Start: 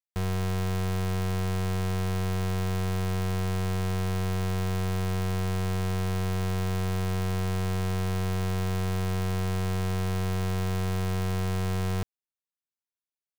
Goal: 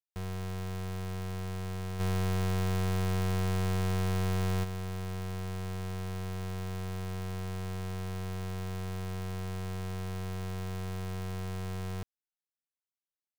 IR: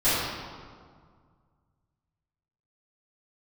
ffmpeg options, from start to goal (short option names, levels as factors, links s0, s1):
-filter_complex "[0:a]asplit=3[s0][s1][s2];[s0]afade=t=out:st=1.99:d=0.02[s3];[s1]acontrast=78,afade=t=in:st=1.99:d=0.02,afade=t=out:st=4.63:d=0.02[s4];[s2]afade=t=in:st=4.63:d=0.02[s5];[s3][s4][s5]amix=inputs=3:normalize=0,volume=0.376"